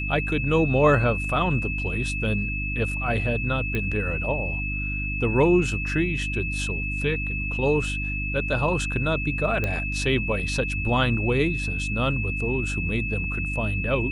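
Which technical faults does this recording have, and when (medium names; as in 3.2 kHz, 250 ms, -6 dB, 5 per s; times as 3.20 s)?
hum 50 Hz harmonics 6 -30 dBFS
whine 2.6 kHz -29 dBFS
3.75 s: pop -15 dBFS
9.64 s: pop -13 dBFS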